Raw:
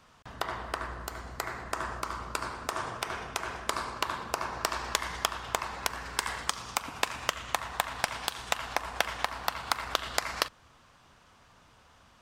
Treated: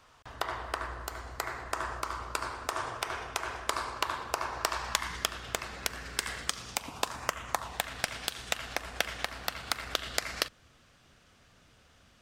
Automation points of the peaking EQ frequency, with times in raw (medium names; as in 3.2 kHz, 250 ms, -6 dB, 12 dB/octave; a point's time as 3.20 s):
peaking EQ -11 dB 0.7 oct
4.69 s 190 Hz
5.26 s 950 Hz
6.67 s 950 Hz
7.43 s 4.7 kHz
7.83 s 970 Hz